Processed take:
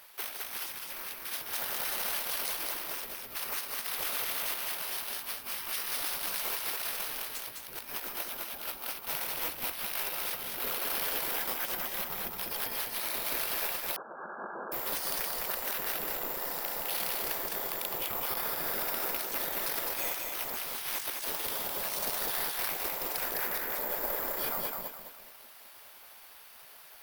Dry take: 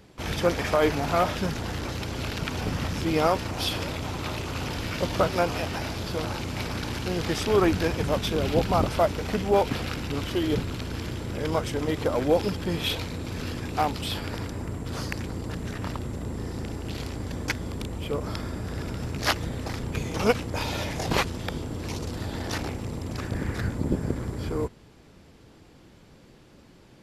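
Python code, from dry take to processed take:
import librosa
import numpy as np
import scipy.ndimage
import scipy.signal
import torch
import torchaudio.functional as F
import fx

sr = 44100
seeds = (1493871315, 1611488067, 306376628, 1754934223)

p1 = fx.spec_gate(x, sr, threshold_db=-15, keep='weak')
p2 = fx.over_compress(p1, sr, threshold_db=-41.0, ratio=-0.5)
p3 = p2 + fx.echo_feedback(p2, sr, ms=208, feedback_pct=36, wet_db=-3.5, dry=0)
p4 = (np.kron(scipy.signal.resample_poly(p3, 1, 3), np.eye(3)[0]) * 3)[:len(p3)]
y = fx.brickwall_bandpass(p4, sr, low_hz=160.0, high_hz=1700.0, at=(13.96, 14.72))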